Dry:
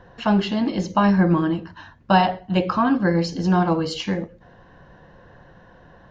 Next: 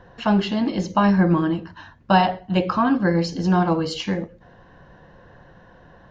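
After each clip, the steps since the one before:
no processing that can be heard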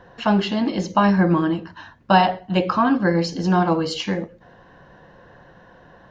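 low-shelf EQ 120 Hz −8 dB
level +2 dB

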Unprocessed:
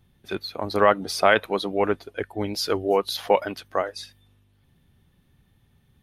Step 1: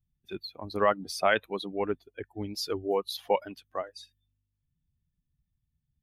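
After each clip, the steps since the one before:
spectral dynamics exaggerated over time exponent 1.5
level −5 dB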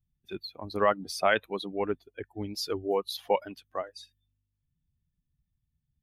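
no processing that can be heard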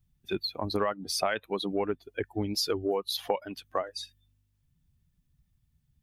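downward compressor 8 to 1, threshold −34 dBFS, peak gain reduction 15.5 dB
level +8.5 dB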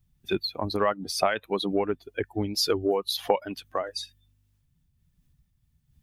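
amplitude modulation by smooth noise, depth 65%
level +7.5 dB

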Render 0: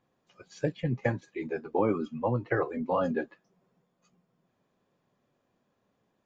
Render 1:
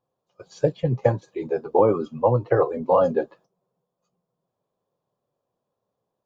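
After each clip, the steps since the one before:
noise gate −58 dBFS, range −13 dB
octave-band graphic EQ 125/250/500/1,000/2,000/4,000 Hz +5/−5/+8/+6/−10/+3 dB
level +3.5 dB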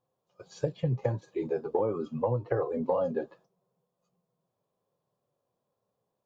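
harmonic and percussive parts rebalanced harmonic +6 dB
downward compressor 10 to 1, threshold −19 dBFS, peak gain reduction 11 dB
level −5.5 dB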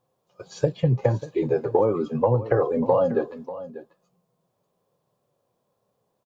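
single-tap delay 591 ms −15 dB
level +8 dB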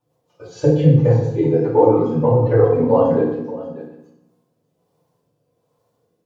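rotating-speaker cabinet horn 6 Hz, later 1.2 Hz, at 0:03.62
feedback delay network reverb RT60 0.84 s, low-frequency decay 1.3×, high-frequency decay 0.8×, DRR −8.5 dB
level −2 dB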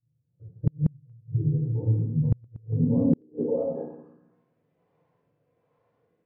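low-pass filter sweep 120 Hz → 2,100 Hz, 0:02.64–0:04.45
gate with flip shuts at −6 dBFS, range −38 dB
level −4 dB

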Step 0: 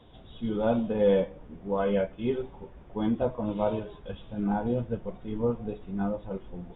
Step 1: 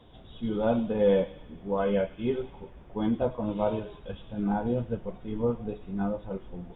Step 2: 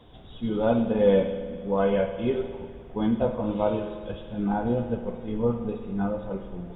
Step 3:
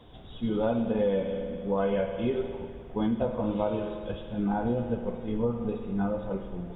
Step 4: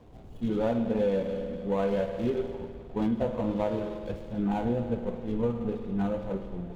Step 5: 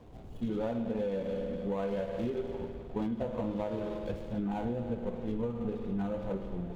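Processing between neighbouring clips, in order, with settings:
delay with a high-pass on its return 100 ms, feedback 63%, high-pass 2,700 Hz, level −10 dB
spring reverb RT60 1.9 s, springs 51 ms, chirp 55 ms, DRR 7.5 dB; level +2.5 dB
downward compressor 6 to 1, threshold −23 dBFS, peak gain reduction 8.5 dB
running median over 25 samples
downward compressor, threshold −30 dBFS, peak gain reduction 8 dB

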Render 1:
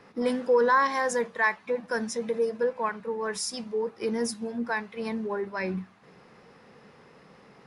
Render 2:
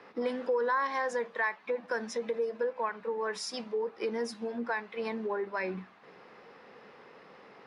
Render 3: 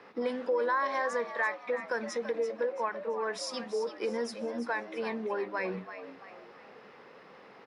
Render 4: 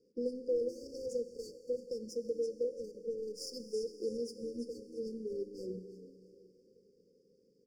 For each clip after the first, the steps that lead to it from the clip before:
three-way crossover with the lows and the highs turned down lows −14 dB, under 270 Hz, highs −16 dB, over 4,900 Hz; downward compressor 2.5 to 1, threshold −33 dBFS, peak gain reduction 10 dB; level +2 dB
echo with shifted repeats 336 ms, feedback 41%, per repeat +84 Hz, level −11 dB
power curve on the samples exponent 1.4; linear-phase brick-wall band-stop 540–4,500 Hz; four-comb reverb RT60 3.3 s, combs from 29 ms, DRR 11.5 dB

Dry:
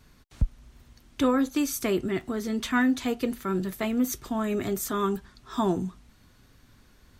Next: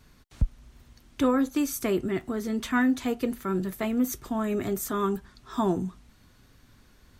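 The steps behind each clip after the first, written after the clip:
dynamic equaliser 4,000 Hz, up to −4 dB, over −50 dBFS, Q 0.76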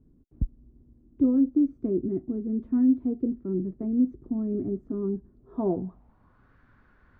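low-pass filter sweep 310 Hz → 1,500 Hz, 0:05.19–0:06.55
level −3.5 dB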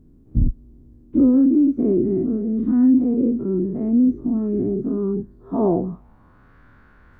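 every bin's largest magnitude spread in time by 120 ms
level +4 dB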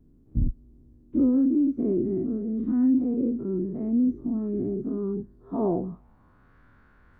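pitch vibrato 0.41 Hz 12 cents
level −6.5 dB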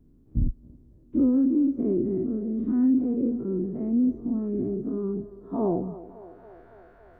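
feedback echo with a band-pass in the loop 279 ms, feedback 78%, band-pass 650 Hz, level −14 dB

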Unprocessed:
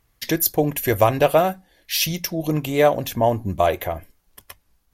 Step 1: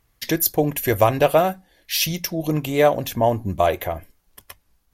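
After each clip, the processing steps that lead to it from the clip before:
no processing that can be heard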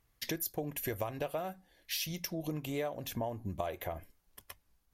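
downward compressor 6 to 1, threshold −25 dBFS, peak gain reduction 14 dB
level −8.5 dB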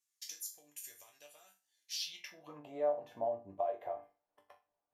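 resonators tuned to a chord G2 minor, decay 0.3 s
band-pass filter sweep 7,100 Hz → 710 Hz, 0:01.86–0:02.66
level +14.5 dB

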